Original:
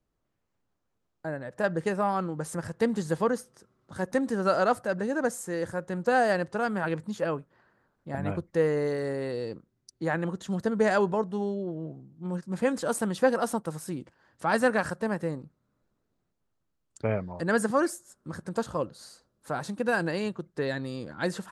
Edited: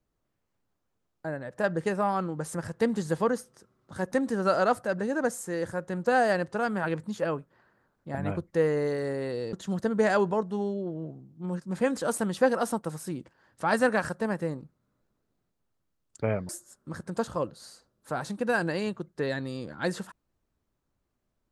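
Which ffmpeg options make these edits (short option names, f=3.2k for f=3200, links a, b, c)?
-filter_complex "[0:a]asplit=3[a][b][c];[a]atrim=end=9.532[d];[b]atrim=start=10.338:end=17.302[e];[c]atrim=start=17.878[f];[d][e]acrossfade=d=0.004:c1=hsin:c2=hsin[g];[g][f]acrossfade=d=0.004:c1=hsin:c2=hsin"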